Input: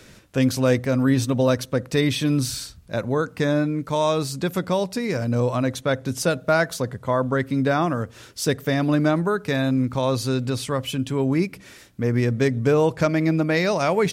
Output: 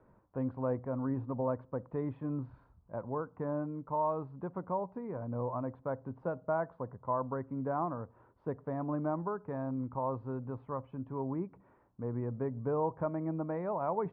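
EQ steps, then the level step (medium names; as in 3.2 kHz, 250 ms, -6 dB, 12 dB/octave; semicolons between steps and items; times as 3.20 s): four-pole ladder low-pass 1.1 kHz, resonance 60%; distance through air 160 m; -5.0 dB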